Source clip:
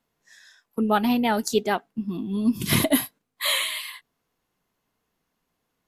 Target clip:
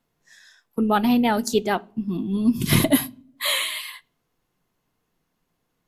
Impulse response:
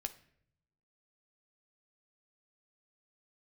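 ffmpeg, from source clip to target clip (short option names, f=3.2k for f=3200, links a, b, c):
-filter_complex "[0:a]asplit=2[a][b];[1:a]atrim=start_sample=2205,asetrate=70560,aresample=44100,lowshelf=f=430:g=10.5[c];[b][c]afir=irnorm=-1:irlink=0,volume=-1dB[d];[a][d]amix=inputs=2:normalize=0,volume=-2.5dB"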